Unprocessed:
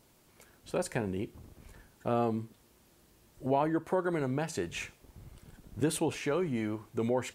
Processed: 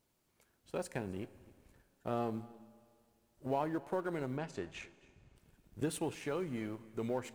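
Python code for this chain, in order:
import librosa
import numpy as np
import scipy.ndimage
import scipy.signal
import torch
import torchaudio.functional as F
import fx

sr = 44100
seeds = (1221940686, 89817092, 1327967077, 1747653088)

p1 = fx.law_mismatch(x, sr, coded='A')
p2 = fx.air_absorb(p1, sr, metres=70.0, at=(4.37, 5.36))
p3 = p2 + fx.echo_single(p2, sr, ms=265, db=-22.0, dry=0)
p4 = fx.rev_schroeder(p3, sr, rt60_s=2.5, comb_ms=32, drr_db=19.0)
y = F.gain(torch.from_numpy(p4), -5.5).numpy()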